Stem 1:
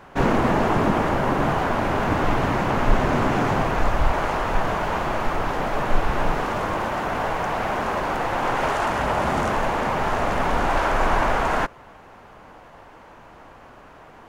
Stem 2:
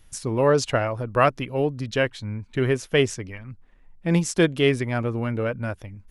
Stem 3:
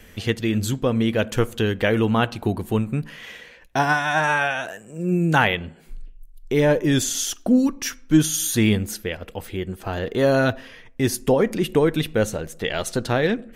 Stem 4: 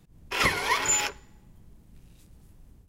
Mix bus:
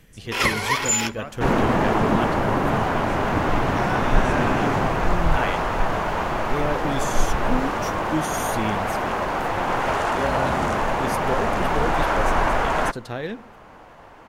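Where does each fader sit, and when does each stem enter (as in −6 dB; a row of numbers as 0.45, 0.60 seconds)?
0.0, −18.5, −9.5, +3.0 decibels; 1.25, 0.00, 0.00, 0.00 seconds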